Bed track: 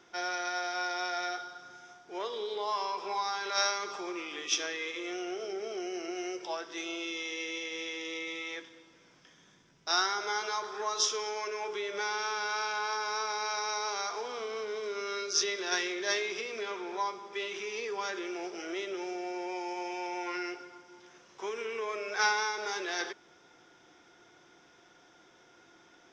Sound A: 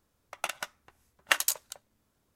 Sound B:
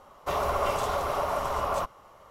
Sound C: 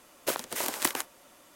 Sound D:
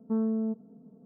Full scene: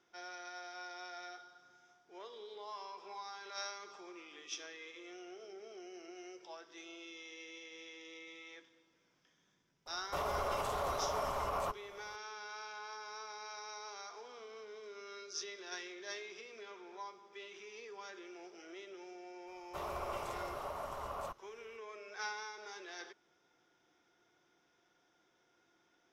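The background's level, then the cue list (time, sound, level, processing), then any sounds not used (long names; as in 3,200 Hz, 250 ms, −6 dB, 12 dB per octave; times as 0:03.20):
bed track −14 dB
0:09.86: mix in B −4 dB + brickwall limiter −24 dBFS
0:19.47: mix in B −14 dB
not used: A, C, D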